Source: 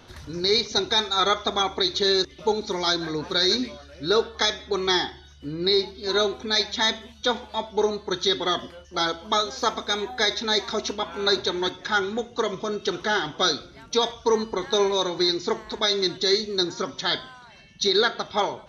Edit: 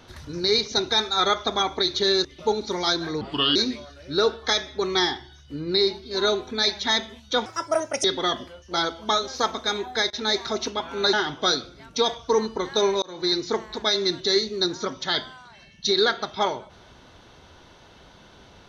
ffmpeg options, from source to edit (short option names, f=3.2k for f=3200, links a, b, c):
-filter_complex "[0:a]asplit=9[a][b][c][d][e][f][g][h][i];[a]atrim=end=3.214[j];[b]atrim=start=3.21:end=3.48,asetpts=PTS-STARTPTS,asetrate=34398,aresample=44100,atrim=end_sample=15265,asetpts=PTS-STARTPTS[k];[c]atrim=start=3.476:end=7.384[l];[d]atrim=start=7.38:end=8.27,asetpts=PTS-STARTPTS,asetrate=67032,aresample=44100[m];[e]atrim=start=8.266:end=10.33,asetpts=PTS-STARTPTS,afade=t=out:st=1.654:d=0.41:c=log:silence=0.0749894[n];[f]atrim=start=10.33:end=10.36,asetpts=PTS-STARTPTS,volume=-22.5dB[o];[g]atrim=start=10.36:end=11.362,asetpts=PTS-STARTPTS,afade=t=in:d=0.41:c=log:silence=0.0749894[p];[h]atrim=start=13.098:end=14.99,asetpts=PTS-STARTPTS,afade=t=out:st=1.888:d=0.004:c=hsin[q];[i]atrim=start=14.99,asetpts=PTS-STARTPTS,afade=t=in:d=0.31[r];[j][k]acrossfade=d=0.004:c1=hsin:c2=hsin[s];[s][l]acrossfade=d=0.004:c1=hsin:c2=hsin[t];[t][m]acrossfade=d=0.004:c1=hsin:c2=hsin[u];[n][o][p]concat=n=3:v=0:a=1[v];[u][v]acrossfade=d=0.004:c1=hsin:c2=hsin[w];[q][r]concat=n=2:v=0:a=1[x];[w][x]acrossfade=d=0.004:c1=hsin:c2=hsin"